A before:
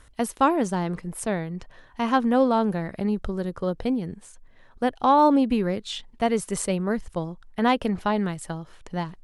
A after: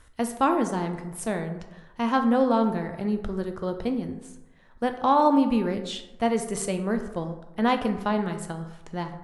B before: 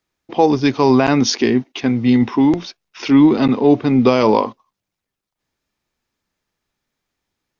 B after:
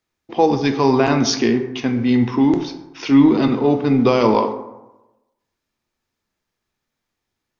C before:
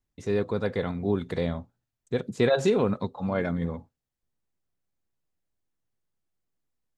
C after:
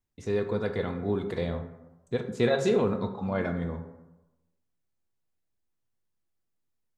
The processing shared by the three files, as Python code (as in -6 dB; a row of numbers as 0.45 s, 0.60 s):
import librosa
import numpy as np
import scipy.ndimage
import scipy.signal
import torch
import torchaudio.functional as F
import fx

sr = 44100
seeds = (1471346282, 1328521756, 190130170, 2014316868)

y = fx.rev_plate(x, sr, seeds[0], rt60_s=1.0, hf_ratio=0.45, predelay_ms=0, drr_db=6.0)
y = y * 10.0 ** (-2.5 / 20.0)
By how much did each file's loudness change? -1.5 LU, -2.0 LU, -1.5 LU